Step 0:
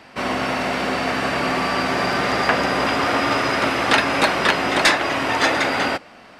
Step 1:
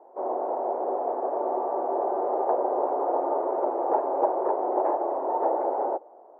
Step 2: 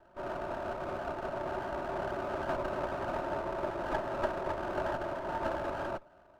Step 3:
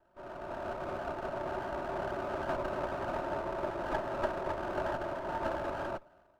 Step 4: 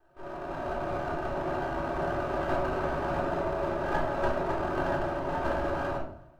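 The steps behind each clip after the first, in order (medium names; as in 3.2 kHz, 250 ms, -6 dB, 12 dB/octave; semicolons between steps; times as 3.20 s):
elliptic band-pass 360–890 Hz, stop band 70 dB; trim -1 dB
comb filter that takes the minimum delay 3.2 ms; trim -7.5 dB
level rider gain up to 8 dB; trim -8.5 dB
reverberation RT60 0.60 s, pre-delay 3 ms, DRR -3 dB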